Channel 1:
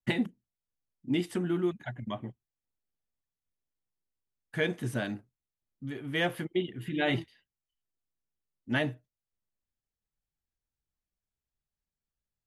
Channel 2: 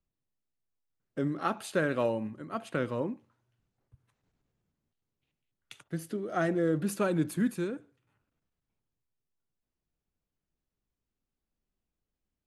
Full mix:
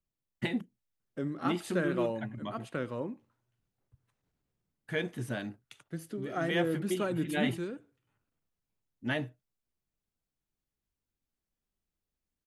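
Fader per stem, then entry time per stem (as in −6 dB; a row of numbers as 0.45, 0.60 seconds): −3.5, −4.0 decibels; 0.35, 0.00 seconds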